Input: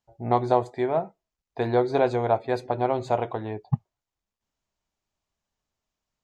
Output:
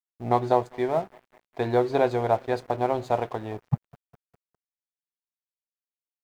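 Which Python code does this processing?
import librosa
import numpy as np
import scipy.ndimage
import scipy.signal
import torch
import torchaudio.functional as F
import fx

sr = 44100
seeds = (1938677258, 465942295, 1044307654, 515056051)

y = fx.quant_dither(x, sr, seeds[0], bits=12, dither='triangular')
y = fx.echo_bbd(y, sr, ms=202, stages=4096, feedback_pct=73, wet_db=-24)
y = np.sign(y) * np.maximum(np.abs(y) - 10.0 ** (-44.0 / 20.0), 0.0)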